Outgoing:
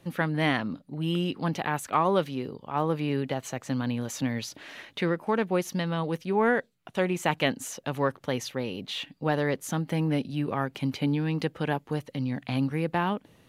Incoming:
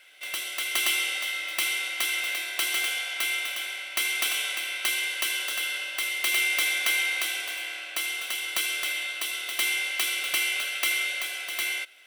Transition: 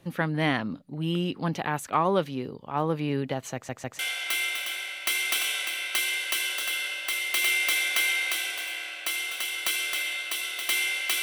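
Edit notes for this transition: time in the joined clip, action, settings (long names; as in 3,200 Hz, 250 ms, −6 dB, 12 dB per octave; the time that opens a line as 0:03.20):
outgoing
0:03.54: stutter in place 0.15 s, 3 plays
0:03.99: continue with incoming from 0:02.89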